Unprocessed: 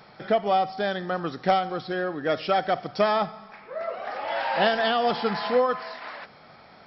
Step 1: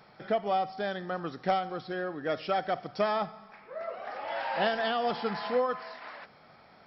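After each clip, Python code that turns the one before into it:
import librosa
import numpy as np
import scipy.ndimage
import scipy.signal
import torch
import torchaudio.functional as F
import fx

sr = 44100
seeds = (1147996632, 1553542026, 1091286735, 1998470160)

y = fx.peak_eq(x, sr, hz=3900.0, db=-2.0, octaves=0.77)
y = y * librosa.db_to_amplitude(-6.0)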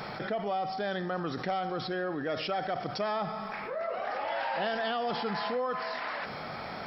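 y = fx.env_flatten(x, sr, amount_pct=70)
y = y * librosa.db_to_amplitude(-6.0)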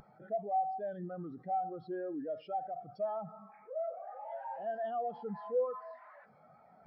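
y = 10.0 ** (-30.0 / 20.0) * np.tanh(x / 10.0 ** (-30.0 / 20.0))
y = fx.spectral_expand(y, sr, expansion=2.5)
y = y * librosa.db_to_amplitude(6.0)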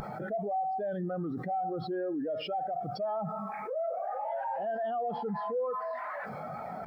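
y = fx.env_flatten(x, sr, amount_pct=70)
y = y * librosa.db_to_amplitude(-2.0)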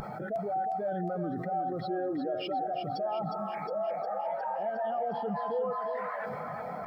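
y = fx.echo_thinned(x, sr, ms=359, feedback_pct=62, hz=170.0, wet_db=-7.5)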